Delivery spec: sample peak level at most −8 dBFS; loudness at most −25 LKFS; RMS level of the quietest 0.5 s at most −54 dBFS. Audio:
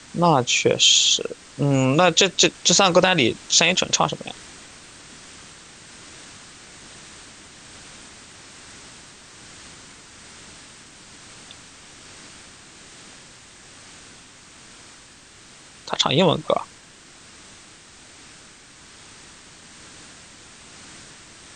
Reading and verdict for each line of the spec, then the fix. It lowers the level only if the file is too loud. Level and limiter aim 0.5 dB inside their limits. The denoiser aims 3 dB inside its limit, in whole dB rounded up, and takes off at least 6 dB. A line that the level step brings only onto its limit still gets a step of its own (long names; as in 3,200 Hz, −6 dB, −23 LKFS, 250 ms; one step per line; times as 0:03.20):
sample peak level −4.0 dBFS: out of spec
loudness −17.5 LKFS: out of spec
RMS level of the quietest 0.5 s −47 dBFS: out of spec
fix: level −8 dB